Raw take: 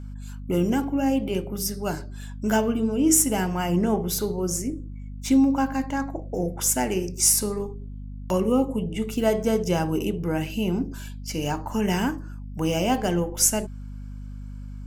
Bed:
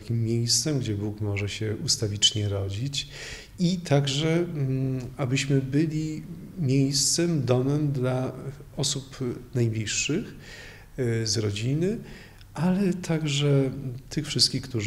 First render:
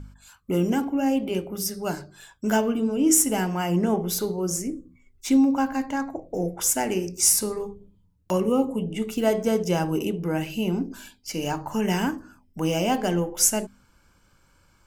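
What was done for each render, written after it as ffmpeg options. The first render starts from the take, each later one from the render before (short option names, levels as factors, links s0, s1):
-af "bandreject=f=50:t=h:w=4,bandreject=f=100:t=h:w=4,bandreject=f=150:t=h:w=4,bandreject=f=200:t=h:w=4,bandreject=f=250:t=h:w=4"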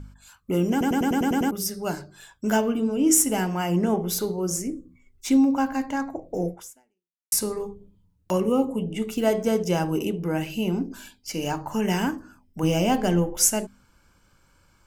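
-filter_complex "[0:a]asettb=1/sr,asplit=3[s0][s1][s2];[s0]atrim=end=12.634[s3];[s1]atrim=start=12.63:end=13.37,asetpts=PTS-STARTPTS,afade=t=in:d=0.004:c=qsin,afade=t=out:st=0.736:d=0.004:c=qsin,lowshelf=f=150:g=9.5[s4];[s2]atrim=start=13.366[s5];[s3][s4]acrossfade=d=0.004:c1=hsin:c2=qsin[s6];[s6][s5]acrossfade=d=0.004:c1=qsin:c2=hsin,asplit=10[s7][s8][s9][s10][s11][s12][s13][s14][s15][s16];[s7]atrim=end=0.812[s17];[s8]atrim=start=0.708:end=0.812[s18];[s9]atrim=start=0.708:end=0.812[s19];[s10]atrim=start=0.708:end=0.812[s20];[s11]atrim=start=0.708:end=0.812[s21];[s12]atrim=start=0.708:end=0.812[s22];[s13]atrim=start=0.708:end=0.812[s23];[s14]atrim=start=0.708:end=0.812[s24];[s15]atrim=start=1.508:end=7.32,asetpts=PTS-STARTPTS,afade=t=out:st=5.002:d=0.81:c=exp[s25];[s16]atrim=start=7.32,asetpts=PTS-STARTPTS,afade=t=in:d=0.004:c=hsin[s26];[s17][s18]acrossfade=d=0.004:c1=hsin:c2=hsin[s27];[s27][s19]acrossfade=d=0.004:c1=hsin:c2=hsin[s28];[s28][s20]acrossfade=d=0.004:c1=hsin:c2=hsin[s29];[s29][s21]acrossfade=d=0.004:c1=hsin:c2=hsin[s30];[s30][s22]acrossfade=d=0.004:c1=hsin:c2=hsin[s31];[s31][s23]acrossfade=d=0.004:c1=hsin:c2=hsin[s32];[s32][s24]acrossfade=d=0.004:c1=hsin:c2=hsin[s33];[s25][s26]concat=n=2:v=0:a=1[s34];[s33][s34]acrossfade=d=0.004:c1=hsin:c2=hsin"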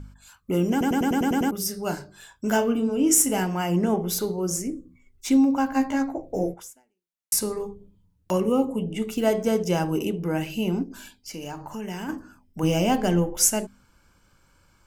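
-filter_complex "[0:a]asettb=1/sr,asplit=3[s0][s1][s2];[s0]atrim=end=1.634[s3];[s1]atrim=start=1.63:end=3.43,asetpts=PTS-STARTPTS,afade=t=in:d=0.004:c=qsin,afade=t=out:st=1.796:d=0.004:c=qsin,asplit=2[s4][s5];[s5]adelay=30,volume=0.282[s6];[s4][s6]amix=inputs=2:normalize=0,atrim=end_sample=79380[s7];[s2]atrim=start=3.426[s8];[s3][s7]acrossfade=d=0.004:c1=hsin:c2=qsin[s9];[s9][s8]acrossfade=d=0.004:c1=qsin:c2=hsin,asettb=1/sr,asplit=3[s10][s11][s12];[s10]atrim=end=5.734[s13];[s11]atrim=start=5.73:end=6.54,asetpts=PTS-STARTPTS,afade=t=in:d=0.004:c=qsin,afade=t=out:st=0.806:d=0.004:c=qsin,asplit=2[s14][s15];[s15]adelay=15,volume=0.794[s16];[s14][s16]amix=inputs=2:normalize=0,atrim=end_sample=35721[s17];[s12]atrim=start=6.536[s18];[s13][s17]acrossfade=d=0.004:c1=hsin:c2=qsin[s19];[s19][s18]acrossfade=d=0.004:c1=qsin:c2=hsin,asplit=3[s20][s21][s22];[s20]afade=t=out:st=10.83:d=0.02[s23];[s21]acompressor=threshold=0.0141:ratio=2:attack=3.2:release=140:knee=1:detection=peak,afade=t=in:st=10.83:d=0.02,afade=t=out:st=12.08:d=0.02[s24];[s22]afade=t=in:st=12.08:d=0.02[s25];[s23][s24][s25]amix=inputs=3:normalize=0"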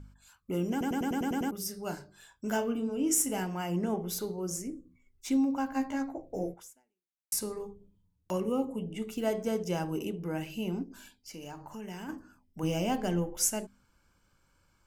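-af "volume=0.376"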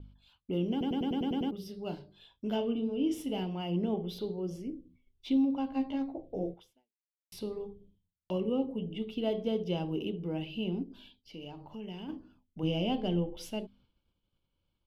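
-af "agate=range=0.0224:threshold=0.001:ratio=3:detection=peak,firequalizer=gain_entry='entry(440,0);entry(1600,-15);entry(3200,7);entry(7000,-28);entry(11000,-21)':delay=0.05:min_phase=1"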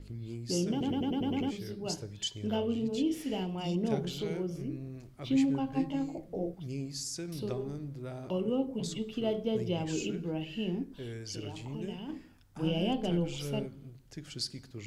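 -filter_complex "[1:a]volume=0.168[s0];[0:a][s0]amix=inputs=2:normalize=0"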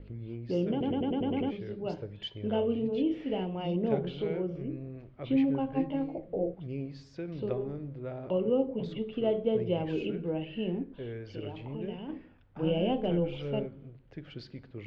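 -af "lowpass=f=3000:w=0.5412,lowpass=f=3000:w=1.3066,equalizer=f=520:w=2.2:g=7"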